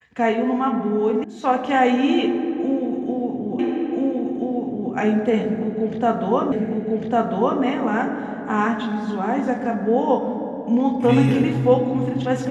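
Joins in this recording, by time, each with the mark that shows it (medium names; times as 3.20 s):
1.24 s: sound stops dead
3.59 s: repeat of the last 1.33 s
6.52 s: repeat of the last 1.1 s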